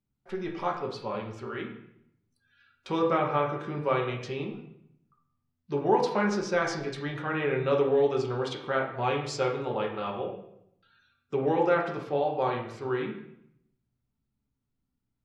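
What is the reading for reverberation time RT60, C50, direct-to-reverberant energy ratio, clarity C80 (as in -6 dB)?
0.75 s, 6.5 dB, 0.0 dB, 9.5 dB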